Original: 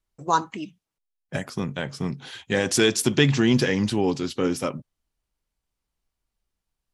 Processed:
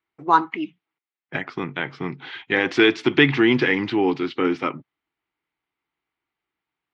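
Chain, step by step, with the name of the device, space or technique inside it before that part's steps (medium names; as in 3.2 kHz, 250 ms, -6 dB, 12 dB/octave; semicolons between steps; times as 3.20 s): kitchen radio (cabinet simulation 190–3500 Hz, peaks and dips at 210 Hz -9 dB, 320 Hz +6 dB, 560 Hz -9 dB, 850 Hz +3 dB, 1.3 kHz +4 dB, 2.1 kHz +8 dB); trim +3 dB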